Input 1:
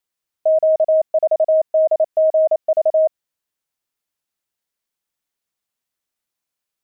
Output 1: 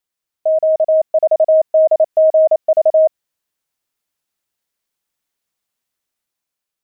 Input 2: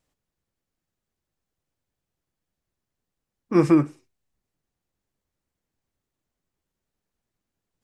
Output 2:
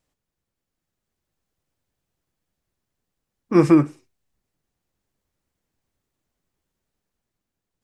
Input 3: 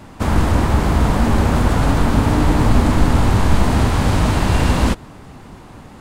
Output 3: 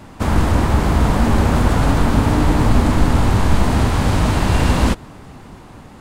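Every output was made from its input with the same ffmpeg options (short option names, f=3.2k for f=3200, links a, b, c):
-af "dynaudnorm=f=280:g=7:m=4dB"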